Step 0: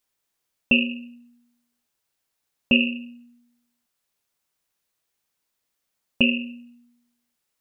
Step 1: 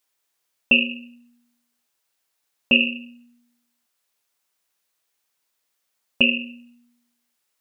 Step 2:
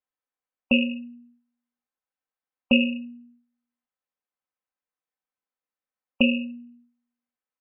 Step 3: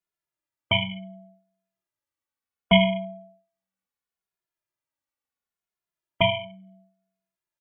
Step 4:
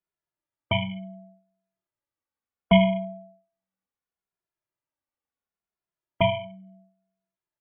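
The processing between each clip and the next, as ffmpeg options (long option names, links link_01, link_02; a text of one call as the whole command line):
ffmpeg -i in.wav -af "lowshelf=frequency=280:gain=-10.5,volume=3.5dB" out.wav
ffmpeg -i in.wav -af "lowpass=1700,aecho=1:1:3.9:0.57,afftdn=noise_reduction=13:noise_floor=-38" out.wav
ffmpeg -i in.wav -filter_complex "[0:a]bandreject=frequency=112.7:width_type=h:width=4,bandreject=frequency=225.4:width_type=h:width=4,bandreject=frequency=338.1:width_type=h:width=4,bandreject=frequency=450.8:width_type=h:width=4,bandreject=frequency=563.5:width_type=h:width=4,aeval=exprs='val(0)*sin(2*PI*430*n/s)':channel_layout=same,asplit=2[link_01][link_02];[link_02]adelay=2.4,afreqshift=-0.7[link_03];[link_01][link_03]amix=inputs=2:normalize=1,volume=6.5dB" out.wav
ffmpeg -i in.wav -af "lowpass=frequency=1300:poles=1,volume=1.5dB" out.wav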